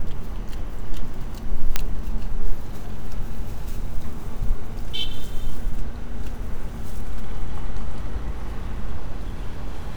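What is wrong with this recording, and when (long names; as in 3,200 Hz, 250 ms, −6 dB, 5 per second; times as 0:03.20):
0:01.76: click −3 dBFS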